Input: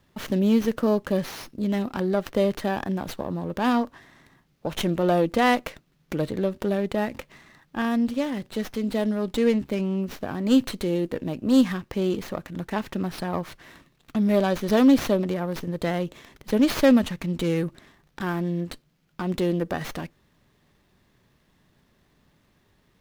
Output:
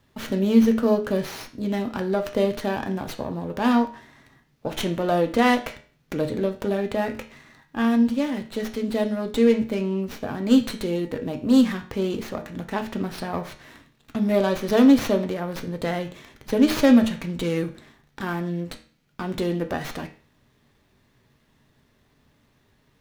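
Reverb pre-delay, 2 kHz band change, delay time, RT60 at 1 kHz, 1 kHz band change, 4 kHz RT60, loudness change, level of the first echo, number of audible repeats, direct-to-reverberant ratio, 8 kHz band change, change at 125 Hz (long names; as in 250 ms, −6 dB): 5 ms, +1.0 dB, no echo audible, 0.45 s, +0.5 dB, 0.40 s, +1.5 dB, no echo audible, no echo audible, 5.0 dB, +1.0 dB, −1.0 dB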